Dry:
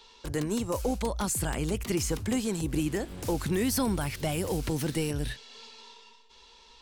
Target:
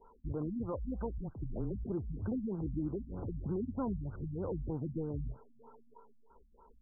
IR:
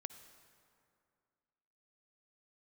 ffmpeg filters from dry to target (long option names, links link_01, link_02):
-filter_complex "[0:a]asettb=1/sr,asplit=3[link_01][link_02][link_03];[link_01]atrim=end=1.184[link_04];[link_02]atrim=start=1.18:end=1.75,asetpts=PTS-STARTPTS,afade=type=in:duration=0.004:curve=qsin,afade=type=out:start_time=0.566:duration=0.004:curve=qsin,afreqshift=-25[link_05];[link_03]atrim=start=1.746[link_06];[link_04][link_05]acrossfade=duration=0.004:curve1=hsin:curve2=qsin[link_07];[link_07][link_06]acrossfade=duration=0.004:curve1=qsin:curve2=hsin,alimiter=level_in=3.5dB:limit=-24dB:level=0:latency=1:release=135,volume=-3.5dB,afftfilt=real='re*lt(b*sr/1024,240*pow(1600/240,0.5+0.5*sin(2*PI*3.2*pts/sr)))':imag='im*lt(b*sr/1024,240*pow(1600/240,0.5+0.5*sin(2*PI*3.2*pts/sr)))':win_size=1024:overlap=0.75"